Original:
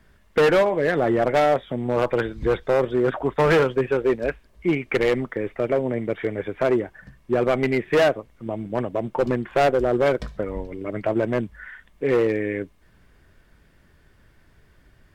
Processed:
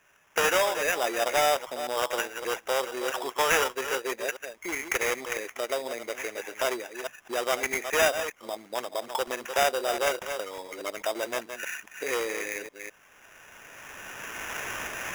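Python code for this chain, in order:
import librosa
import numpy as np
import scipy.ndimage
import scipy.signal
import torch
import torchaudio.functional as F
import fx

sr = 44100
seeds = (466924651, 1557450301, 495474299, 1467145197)

y = fx.reverse_delay(x, sr, ms=208, wet_db=-10)
y = fx.recorder_agc(y, sr, target_db=-14.5, rise_db_per_s=15.0, max_gain_db=30)
y = scipy.signal.sosfilt(scipy.signal.butter(2, 840.0, 'highpass', fs=sr, output='sos'), y)
y = fx.sample_hold(y, sr, seeds[0], rate_hz=4300.0, jitter_pct=0)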